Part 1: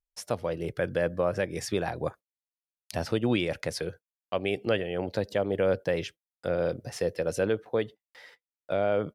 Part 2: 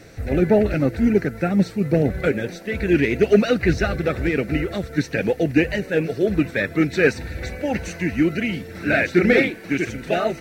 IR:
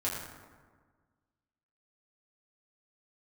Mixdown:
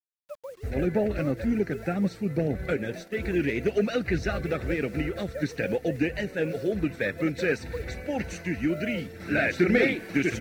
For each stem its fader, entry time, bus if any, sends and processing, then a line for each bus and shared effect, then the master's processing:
-13.5 dB, 0.00 s, no send, formants replaced by sine waves; transient shaper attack +7 dB, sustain -1 dB; bit crusher 7-bit
+1.0 dB, 0.45 s, no send, expander -33 dBFS; auto duck -7 dB, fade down 0.85 s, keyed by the first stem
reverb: none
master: compression 2:1, threshold -23 dBFS, peak gain reduction 7.5 dB

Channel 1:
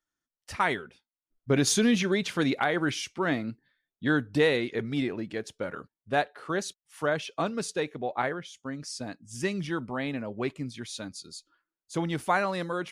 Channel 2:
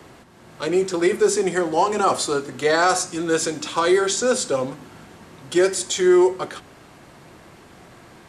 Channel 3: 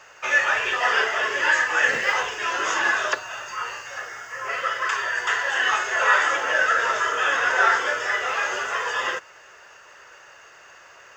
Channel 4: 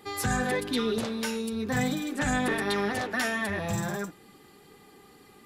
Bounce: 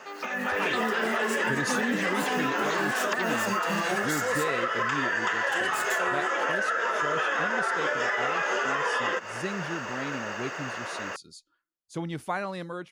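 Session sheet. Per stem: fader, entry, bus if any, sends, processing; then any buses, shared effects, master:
-16.0 dB, 0.00 s, no bus, no send, none
-17.5 dB, 0.00 s, bus A, no send, comb filter that takes the minimum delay 1.8 ms; treble shelf 6.6 kHz +7 dB
+2.5 dB, 0.00 s, bus A, no send, tilt EQ -2 dB/octave; compression, threshold -29 dBFS, peak gain reduction 14 dB
-2.5 dB, 0.00 s, bus A, no send, steep low-pass 4.9 kHz; short-mantissa float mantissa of 2-bit; lamp-driven phase shifter 4.5 Hz
bus A: 0.0 dB, brick-wall FIR high-pass 160 Hz; compression 2.5:1, threshold -36 dBFS, peak gain reduction 9 dB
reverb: none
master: level rider gain up to 11 dB; peaking EQ 130 Hz +2.5 dB 2.6 oct; compression, threshold -23 dBFS, peak gain reduction 5.5 dB

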